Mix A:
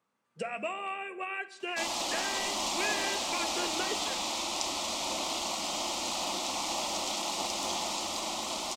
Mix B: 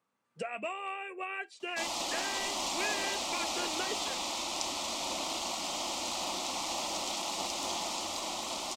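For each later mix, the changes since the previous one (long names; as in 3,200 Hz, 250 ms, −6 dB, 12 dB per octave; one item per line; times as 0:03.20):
reverb: off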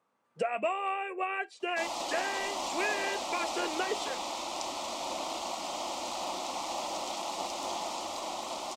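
background −5.0 dB
master: add parametric band 680 Hz +8 dB 2.4 octaves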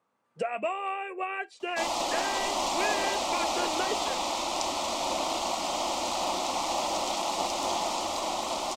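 background +6.0 dB
master: add low-shelf EQ 73 Hz +9 dB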